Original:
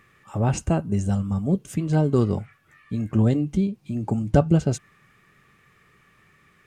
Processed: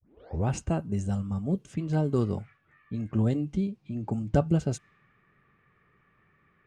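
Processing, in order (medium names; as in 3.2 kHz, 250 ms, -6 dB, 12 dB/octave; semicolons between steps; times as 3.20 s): tape start-up on the opening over 0.48 s; level-controlled noise filter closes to 1.9 kHz, open at -17.5 dBFS; trim -6 dB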